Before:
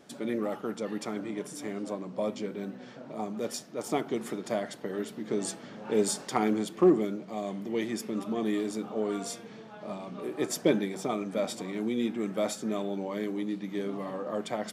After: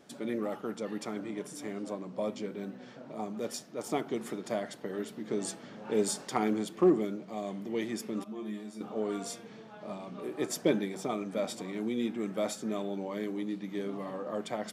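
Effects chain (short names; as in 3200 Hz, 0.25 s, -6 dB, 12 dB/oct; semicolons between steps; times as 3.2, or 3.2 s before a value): 8.24–8.81 resonator 70 Hz, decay 0.23 s, harmonics odd, mix 90%; gain -2.5 dB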